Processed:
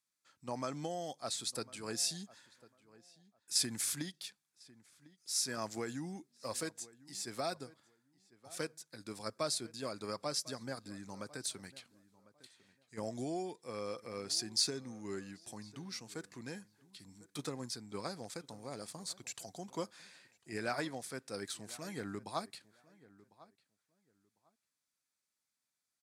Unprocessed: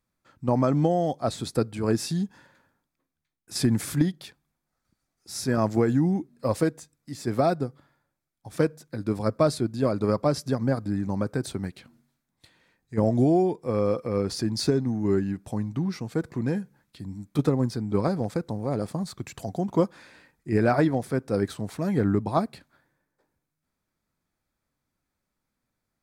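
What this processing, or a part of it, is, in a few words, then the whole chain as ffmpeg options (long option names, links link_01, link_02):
piezo pickup straight into a mixer: -filter_complex "[0:a]lowpass=8400,aderivative,lowshelf=frequency=290:gain=10,asplit=2[link_01][link_02];[link_02]adelay=1050,lowpass=frequency=2200:poles=1,volume=-20dB,asplit=2[link_03][link_04];[link_04]adelay=1050,lowpass=frequency=2200:poles=1,volume=0.2[link_05];[link_01][link_03][link_05]amix=inputs=3:normalize=0,volume=3.5dB"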